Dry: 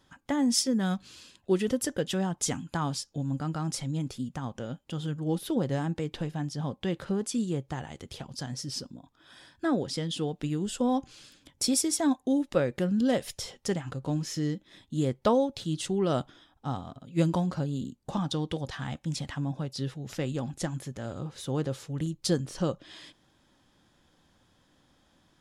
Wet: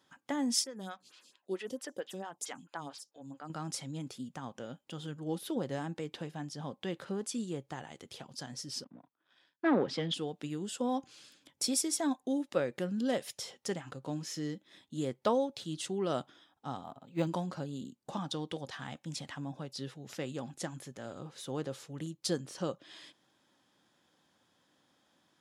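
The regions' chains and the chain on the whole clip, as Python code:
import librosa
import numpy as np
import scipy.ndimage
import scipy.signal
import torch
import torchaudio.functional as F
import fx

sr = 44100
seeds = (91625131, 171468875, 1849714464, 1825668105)

y = fx.chain(x, sr, fx.low_shelf(hz=410.0, db=-8.0),
    fx.stagger_phaser(hz=4.5), at=(0.64, 3.5))
y = fx.chain(y, sr, fx.leveller(passes=2),
    fx.bandpass_edges(low_hz=120.0, high_hz=2700.0),
    fx.band_widen(depth_pct=70), at=(8.84, 10.14))
y = fx.chain(y, sr, fx.highpass(hz=51.0, slope=12),
    fx.peak_eq(hz=850.0, db=9.5, octaves=0.52),
    fx.resample_linear(factor=4), at=(16.84, 17.27))
y = scipy.signal.sosfilt(scipy.signal.butter(2, 120.0, 'highpass', fs=sr, output='sos'), y)
y = fx.low_shelf(y, sr, hz=190.0, db=-8.5)
y = y * 10.0 ** (-4.0 / 20.0)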